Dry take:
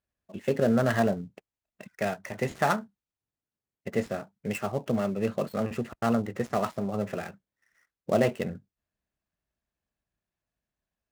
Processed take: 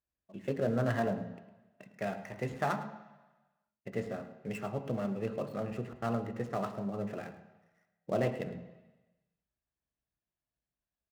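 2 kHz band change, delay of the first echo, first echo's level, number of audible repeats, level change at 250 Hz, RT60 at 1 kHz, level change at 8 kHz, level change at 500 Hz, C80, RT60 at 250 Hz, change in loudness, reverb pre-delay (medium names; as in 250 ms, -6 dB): -7.5 dB, 107 ms, -15.5 dB, 1, -7.5 dB, 1.1 s, -11.5 dB, -7.0 dB, 11.5 dB, 1.0 s, -7.0 dB, 3 ms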